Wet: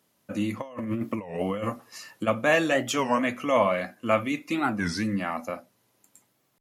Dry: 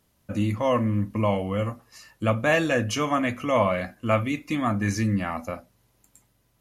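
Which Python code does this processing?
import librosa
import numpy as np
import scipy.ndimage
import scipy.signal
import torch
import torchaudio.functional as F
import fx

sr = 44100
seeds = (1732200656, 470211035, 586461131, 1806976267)

y = scipy.signal.sosfilt(scipy.signal.butter(2, 200.0, 'highpass', fs=sr, output='sos'), x)
y = fx.over_compress(y, sr, threshold_db=-30.0, ratio=-0.5, at=(0.6, 2.26), fade=0.02)
y = fx.record_warp(y, sr, rpm=33.33, depth_cents=250.0)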